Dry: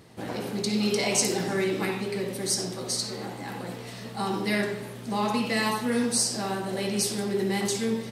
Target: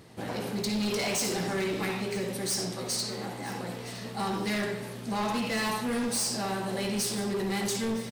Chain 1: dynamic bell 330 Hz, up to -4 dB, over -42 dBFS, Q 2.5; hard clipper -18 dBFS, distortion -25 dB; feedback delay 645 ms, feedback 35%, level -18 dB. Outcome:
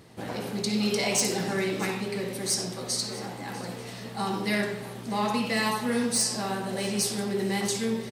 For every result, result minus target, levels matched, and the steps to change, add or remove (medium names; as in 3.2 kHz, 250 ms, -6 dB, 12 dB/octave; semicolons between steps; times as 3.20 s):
hard clipper: distortion -15 dB; echo 317 ms early
change: hard clipper -26.5 dBFS, distortion -10 dB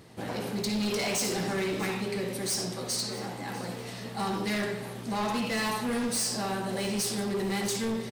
echo 317 ms early
change: feedback delay 962 ms, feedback 35%, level -18 dB